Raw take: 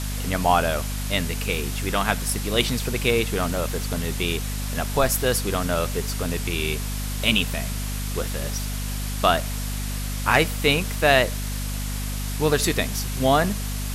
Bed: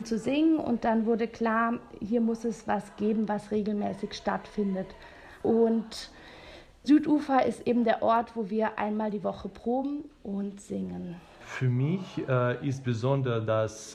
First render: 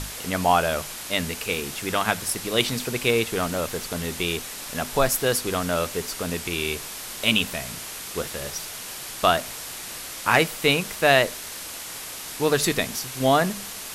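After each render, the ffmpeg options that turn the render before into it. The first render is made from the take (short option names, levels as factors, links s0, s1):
-af "bandreject=f=50:t=h:w=6,bandreject=f=100:t=h:w=6,bandreject=f=150:t=h:w=6,bandreject=f=200:t=h:w=6,bandreject=f=250:t=h:w=6"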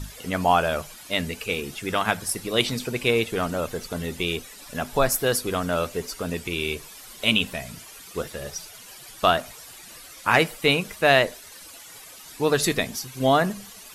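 -af "afftdn=nr=13:nf=-36"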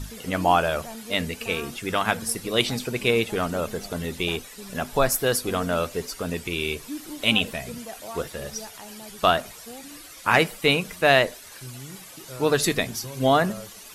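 -filter_complex "[1:a]volume=0.2[s0];[0:a][s0]amix=inputs=2:normalize=0"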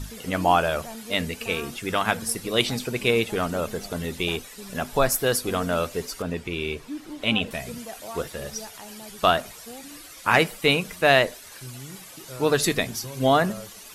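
-filter_complex "[0:a]asettb=1/sr,asplit=3[s0][s1][s2];[s0]atrim=end=6.224[s3];[s1]atrim=start=6.22:end=7.51,asetpts=PTS-STARTPTS,afade=t=in:d=0.004:c=qsin,afade=t=out:st=1.286:d=0.004:c=qsin,lowpass=f=2500:p=1[s4];[s2]atrim=start=7.506[s5];[s3][s4]acrossfade=d=0.004:c1=hsin:c2=qsin[s6];[s6][s5]acrossfade=d=0.004:c1=qsin:c2=hsin"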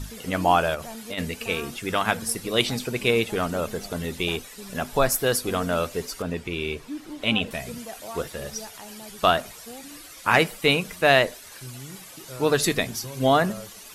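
-filter_complex "[0:a]asplit=3[s0][s1][s2];[s0]afade=t=out:st=0.74:d=0.02[s3];[s1]acompressor=threshold=0.0398:ratio=10:attack=3.2:release=140:knee=1:detection=peak,afade=t=in:st=0.74:d=0.02,afade=t=out:st=1.17:d=0.02[s4];[s2]afade=t=in:st=1.17:d=0.02[s5];[s3][s4][s5]amix=inputs=3:normalize=0"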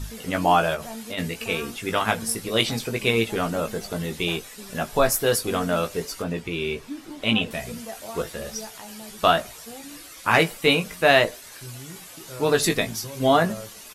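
-filter_complex "[0:a]asplit=2[s0][s1];[s1]adelay=18,volume=0.473[s2];[s0][s2]amix=inputs=2:normalize=0"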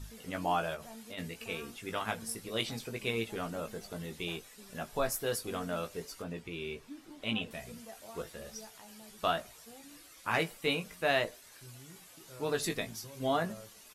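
-af "volume=0.237"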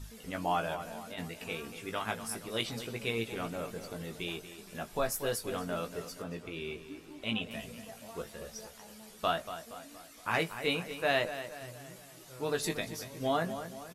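-filter_complex "[0:a]asplit=2[s0][s1];[s1]adelay=235,lowpass=f=3700:p=1,volume=0.282,asplit=2[s2][s3];[s3]adelay=235,lowpass=f=3700:p=1,volume=0.51,asplit=2[s4][s5];[s5]adelay=235,lowpass=f=3700:p=1,volume=0.51,asplit=2[s6][s7];[s7]adelay=235,lowpass=f=3700:p=1,volume=0.51,asplit=2[s8][s9];[s9]adelay=235,lowpass=f=3700:p=1,volume=0.51[s10];[s0][s2][s4][s6][s8][s10]amix=inputs=6:normalize=0"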